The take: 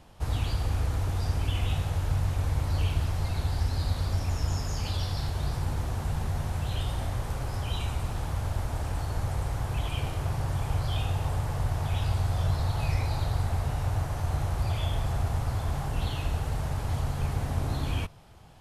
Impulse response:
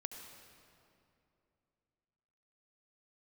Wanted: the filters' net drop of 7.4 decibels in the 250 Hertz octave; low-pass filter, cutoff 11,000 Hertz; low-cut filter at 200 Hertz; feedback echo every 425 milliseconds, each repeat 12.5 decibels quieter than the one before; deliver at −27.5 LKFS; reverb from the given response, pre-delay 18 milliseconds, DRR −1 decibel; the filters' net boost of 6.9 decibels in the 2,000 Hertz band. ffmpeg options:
-filter_complex "[0:a]highpass=200,lowpass=11000,equalizer=frequency=250:width_type=o:gain=-6.5,equalizer=frequency=2000:width_type=o:gain=9,aecho=1:1:425|850|1275:0.237|0.0569|0.0137,asplit=2[link_01][link_02];[1:a]atrim=start_sample=2205,adelay=18[link_03];[link_02][link_03]afir=irnorm=-1:irlink=0,volume=3.5dB[link_04];[link_01][link_04]amix=inputs=2:normalize=0,volume=5dB"

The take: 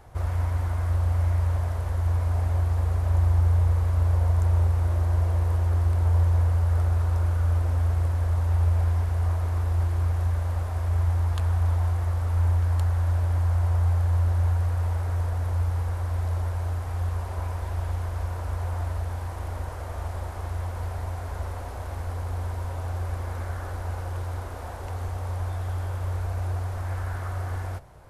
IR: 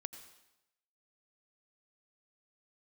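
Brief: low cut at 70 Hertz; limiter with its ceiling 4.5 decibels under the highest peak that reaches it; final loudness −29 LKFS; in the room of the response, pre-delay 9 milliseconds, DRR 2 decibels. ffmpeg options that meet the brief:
-filter_complex "[0:a]highpass=70,alimiter=limit=-19dB:level=0:latency=1,asplit=2[link_01][link_02];[1:a]atrim=start_sample=2205,adelay=9[link_03];[link_02][link_03]afir=irnorm=-1:irlink=0,volume=1dB[link_04];[link_01][link_04]amix=inputs=2:normalize=0,volume=-2dB"

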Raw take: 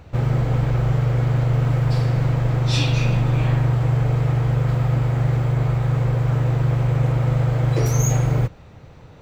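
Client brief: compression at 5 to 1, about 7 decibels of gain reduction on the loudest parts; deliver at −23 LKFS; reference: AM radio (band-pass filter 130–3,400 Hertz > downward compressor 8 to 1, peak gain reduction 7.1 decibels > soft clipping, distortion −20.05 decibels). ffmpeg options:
ffmpeg -i in.wav -af "acompressor=threshold=-23dB:ratio=5,highpass=130,lowpass=3400,acompressor=threshold=-31dB:ratio=8,asoftclip=threshold=-28.5dB,volume=14dB" out.wav

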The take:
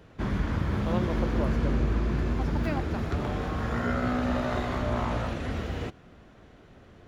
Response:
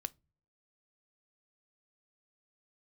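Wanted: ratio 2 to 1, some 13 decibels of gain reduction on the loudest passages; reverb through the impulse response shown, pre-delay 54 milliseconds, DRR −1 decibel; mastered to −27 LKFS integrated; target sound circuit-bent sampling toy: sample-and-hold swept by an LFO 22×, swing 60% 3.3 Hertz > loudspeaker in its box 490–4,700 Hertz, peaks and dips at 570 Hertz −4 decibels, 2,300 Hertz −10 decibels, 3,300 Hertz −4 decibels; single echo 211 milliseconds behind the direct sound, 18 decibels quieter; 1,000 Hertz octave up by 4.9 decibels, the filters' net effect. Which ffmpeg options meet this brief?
-filter_complex "[0:a]equalizer=frequency=1000:width_type=o:gain=7.5,acompressor=threshold=-46dB:ratio=2,aecho=1:1:211:0.126,asplit=2[link_01][link_02];[1:a]atrim=start_sample=2205,adelay=54[link_03];[link_02][link_03]afir=irnorm=-1:irlink=0,volume=3dB[link_04];[link_01][link_04]amix=inputs=2:normalize=0,acrusher=samples=22:mix=1:aa=0.000001:lfo=1:lforange=13.2:lforate=3.3,highpass=490,equalizer=frequency=570:width_type=q:width=4:gain=-4,equalizer=frequency=2300:width_type=q:width=4:gain=-10,equalizer=frequency=3300:width_type=q:width=4:gain=-4,lowpass=frequency=4700:width=0.5412,lowpass=frequency=4700:width=1.3066,volume=15dB"

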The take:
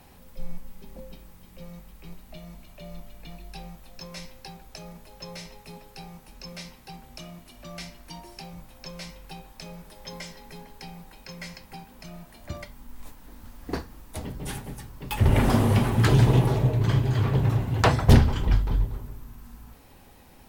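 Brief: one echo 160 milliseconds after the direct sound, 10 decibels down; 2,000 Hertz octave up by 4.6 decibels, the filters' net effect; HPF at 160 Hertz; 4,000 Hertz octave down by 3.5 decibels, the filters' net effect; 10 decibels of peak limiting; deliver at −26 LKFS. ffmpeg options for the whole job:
ffmpeg -i in.wav -af "highpass=160,equalizer=frequency=2000:width_type=o:gain=7.5,equalizer=frequency=4000:width_type=o:gain=-8,alimiter=limit=-16dB:level=0:latency=1,aecho=1:1:160:0.316,volume=5dB" out.wav

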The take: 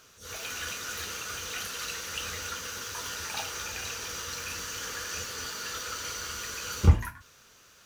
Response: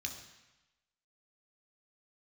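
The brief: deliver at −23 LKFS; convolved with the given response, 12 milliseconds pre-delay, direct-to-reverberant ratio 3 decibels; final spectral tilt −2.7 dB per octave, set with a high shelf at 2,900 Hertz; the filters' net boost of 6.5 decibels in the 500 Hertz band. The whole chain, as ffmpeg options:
-filter_complex "[0:a]equalizer=frequency=500:width_type=o:gain=7,highshelf=frequency=2900:gain=9,asplit=2[link_01][link_02];[1:a]atrim=start_sample=2205,adelay=12[link_03];[link_02][link_03]afir=irnorm=-1:irlink=0,volume=-2.5dB[link_04];[link_01][link_04]amix=inputs=2:normalize=0,volume=1.5dB"

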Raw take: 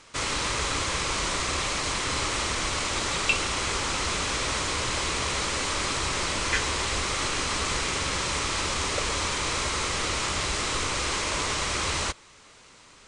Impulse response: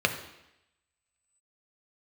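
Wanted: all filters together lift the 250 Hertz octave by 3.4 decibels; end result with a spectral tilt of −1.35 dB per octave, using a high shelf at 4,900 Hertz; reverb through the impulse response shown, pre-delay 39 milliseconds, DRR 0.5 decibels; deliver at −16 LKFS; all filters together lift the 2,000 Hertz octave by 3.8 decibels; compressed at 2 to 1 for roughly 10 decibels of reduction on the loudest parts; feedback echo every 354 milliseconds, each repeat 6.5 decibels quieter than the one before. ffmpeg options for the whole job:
-filter_complex "[0:a]equalizer=frequency=250:width_type=o:gain=4.5,equalizer=frequency=2000:width_type=o:gain=3,highshelf=frequency=4900:gain=8.5,acompressor=threshold=-34dB:ratio=2,aecho=1:1:354|708|1062|1416|1770|2124:0.473|0.222|0.105|0.0491|0.0231|0.0109,asplit=2[link_01][link_02];[1:a]atrim=start_sample=2205,adelay=39[link_03];[link_02][link_03]afir=irnorm=-1:irlink=0,volume=-13.5dB[link_04];[link_01][link_04]amix=inputs=2:normalize=0,volume=10.5dB"

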